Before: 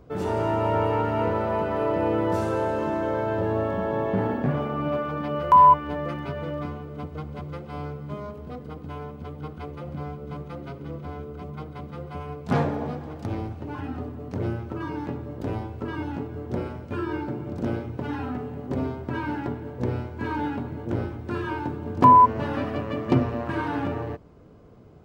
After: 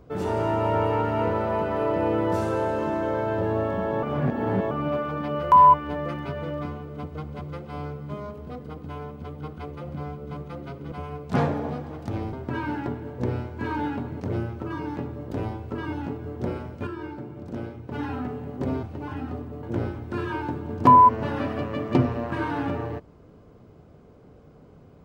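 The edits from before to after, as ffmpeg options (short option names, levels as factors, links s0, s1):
-filter_complex "[0:a]asplit=10[s0][s1][s2][s3][s4][s5][s6][s7][s8][s9];[s0]atrim=end=4.032[s10];[s1]atrim=start=4.028:end=4.712,asetpts=PTS-STARTPTS,areverse[s11];[s2]atrim=start=4.708:end=10.922[s12];[s3]atrim=start=12.088:end=13.502[s13];[s4]atrim=start=18.928:end=20.802[s14];[s5]atrim=start=14.298:end=16.972[s15];[s6]atrim=start=16.968:end=18.022,asetpts=PTS-STARTPTS,volume=0.501[s16];[s7]atrim=start=18.018:end=18.932[s17];[s8]atrim=start=13.498:end=14.302[s18];[s9]atrim=start=20.798[s19];[s10][s11]acrossfade=d=0.004:c1=hsin:c2=hsin[s20];[s20][s12]acrossfade=d=0.004:c1=hsin:c2=hsin[s21];[s21][s13]acrossfade=d=0.004:c1=hsin:c2=hsin[s22];[s22][s14]acrossfade=d=0.004:c1=hsin:c2=hsin[s23];[s23][s15]acrossfade=d=0.004:c1=hsin:c2=hsin[s24];[s24][s16]acrossfade=d=0.004:c1=hsin:c2=hsin[s25];[s25][s17]acrossfade=d=0.004:c1=hsin:c2=hsin[s26];[s26][s18]acrossfade=d=0.004:c1=hsin:c2=hsin[s27];[s27][s19]acrossfade=d=0.004:c1=hsin:c2=hsin"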